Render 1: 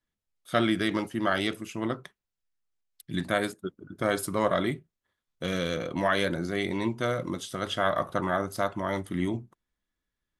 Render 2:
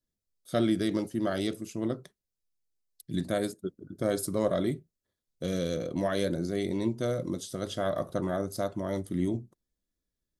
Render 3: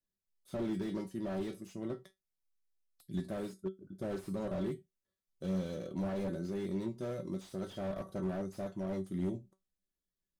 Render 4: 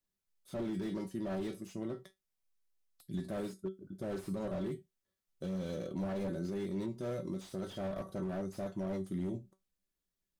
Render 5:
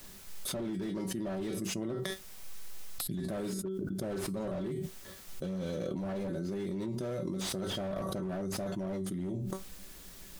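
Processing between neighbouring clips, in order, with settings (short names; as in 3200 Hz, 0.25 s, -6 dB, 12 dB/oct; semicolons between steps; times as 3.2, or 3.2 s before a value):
band shelf 1600 Hz -11 dB 2.3 oct
resonator 190 Hz, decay 0.18 s, harmonics all, mix 80%; slew limiter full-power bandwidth 7.9 Hz; gain +1 dB
limiter -31 dBFS, peak gain reduction 6.5 dB; gain +2 dB
fast leveller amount 100%; gain -1.5 dB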